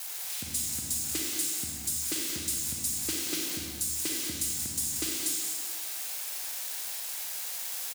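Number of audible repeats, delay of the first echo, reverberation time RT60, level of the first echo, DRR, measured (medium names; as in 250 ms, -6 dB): 1, 181 ms, 1.3 s, -8.0 dB, -2.5 dB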